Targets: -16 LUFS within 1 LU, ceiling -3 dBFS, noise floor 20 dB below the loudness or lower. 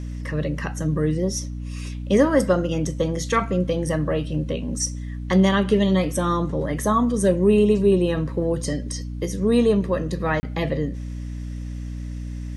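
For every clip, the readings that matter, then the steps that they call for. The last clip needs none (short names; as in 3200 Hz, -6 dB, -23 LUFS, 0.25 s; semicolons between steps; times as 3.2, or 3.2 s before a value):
dropouts 1; longest dropout 30 ms; hum 60 Hz; harmonics up to 300 Hz; hum level -28 dBFS; loudness -22.0 LUFS; peak -5.5 dBFS; loudness target -16.0 LUFS
-> interpolate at 10.4, 30 ms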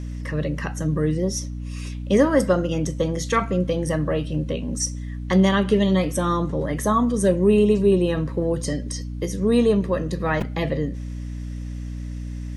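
dropouts 0; hum 60 Hz; harmonics up to 300 Hz; hum level -28 dBFS
-> de-hum 60 Hz, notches 5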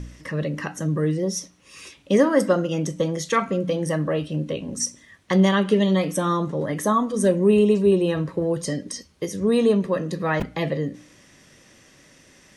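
hum none; loudness -22.5 LUFS; peak -5.5 dBFS; loudness target -16.0 LUFS
-> gain +6.5 dB; limiter -3 dBFS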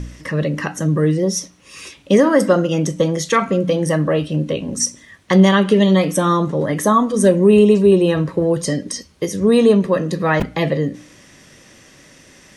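loudness -16.5 LUFS; peak -3.0 dBFS; noise floor -48 dBFS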